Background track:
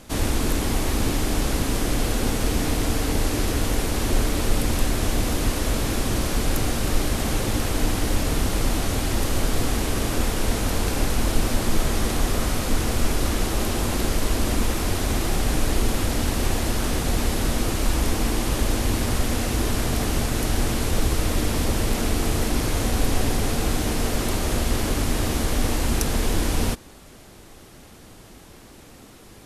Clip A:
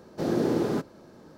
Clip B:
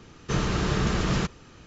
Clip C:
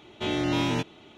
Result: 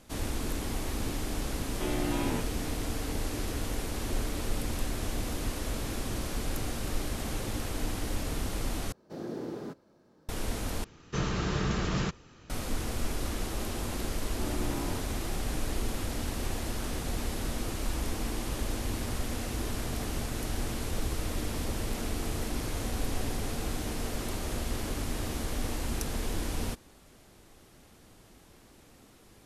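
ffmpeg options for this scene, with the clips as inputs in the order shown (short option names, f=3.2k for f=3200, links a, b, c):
-filter_complex "[3:a]asplit=2[a][b];[0:a]volume=-10.5dB[c];[a]highpass=130,lowpass=2.4k[d];[b]asuperstop=centerf=3100:order=4:qfactor=0.68[e];[c]asplit=3[f][g][h];[f]atrim=end=8.924[i];[1:a]atrim=end=1.37,asetpts=PTS-STARTPTS,volume=-12.5dB[j];[g]atrim=start=10.286:end=10.844[k];[2:a]atrim=end=1.66,asetpts=PTS-STARTPTS,volume=-5dB[l];[h]atrim=start=12.496[m];[d]atrim=end=1.17,asetpts=PTS-STARTPTS,volume=-6dB,afade=t=in:d=0.004:c=hsin,afade=t=out:st=1.166:d=0.004:c=hsin,adelay=1590[n];[e]atrim=end=1.17,asetpts=PTS-STARTPTS,volume=-10.5dB,afade=t=in:d=0.004:c=hsin,afade=t=out:st=1.166:d=0.004:c=hsin,adelay=14180[o];[i][j]acrossfade=d=0.004:c1=hsin:c2=hsin[p];[p][k]acrossfade=d=0.004:c1=hsin:c2=hsin[q];[q][l]acrossfade=d=0.004:c1=hsin:c2=hsin[r];[r][m]acrossfade=d=0.004:c1=hsin:c2=hsin[s];[s][n][o]amix=inputs=3:normalize=0"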